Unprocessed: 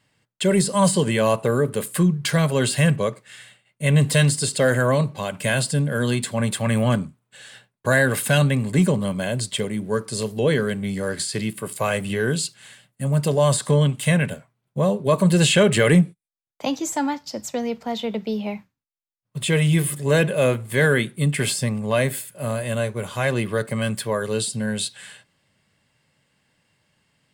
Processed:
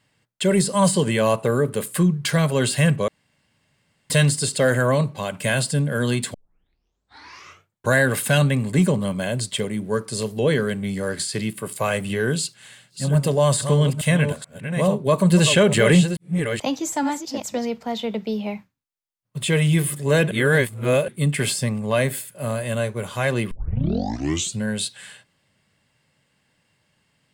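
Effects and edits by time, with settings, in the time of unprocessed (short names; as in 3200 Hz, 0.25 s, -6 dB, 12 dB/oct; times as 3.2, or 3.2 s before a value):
3.08–4.1 room tone
6.34 tape start 1.60 s
12.29–17.67 reverse delay 0.431 s, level -8 dB
20.31–21.08 reverse
23.51 tape start 1.12 s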